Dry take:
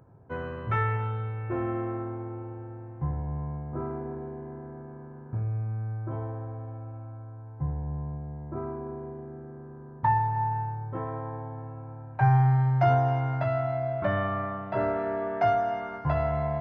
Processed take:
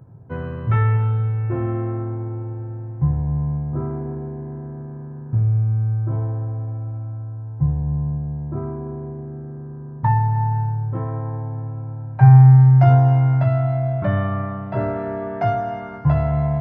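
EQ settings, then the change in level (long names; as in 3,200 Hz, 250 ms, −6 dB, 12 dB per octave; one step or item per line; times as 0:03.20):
parametric band 130 Hz +9 dB 1.5 octaves
low-shelf EQ 380 Hz +3.5 dB
+1.0 dB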